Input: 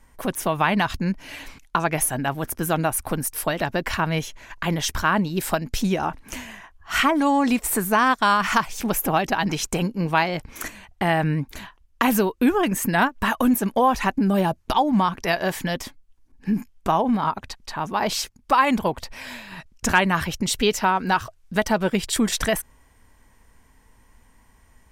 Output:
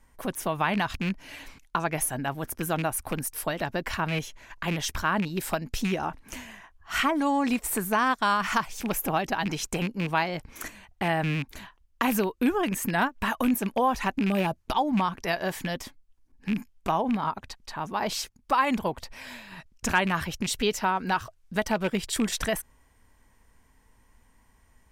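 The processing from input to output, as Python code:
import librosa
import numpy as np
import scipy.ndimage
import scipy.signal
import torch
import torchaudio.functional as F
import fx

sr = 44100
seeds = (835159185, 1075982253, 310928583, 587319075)

y = fx.rattle_buzz(x, sr, strikes_db=-24.0, level_db=-17.0)
y = y * librosa.db_to_amplitude(-5.5)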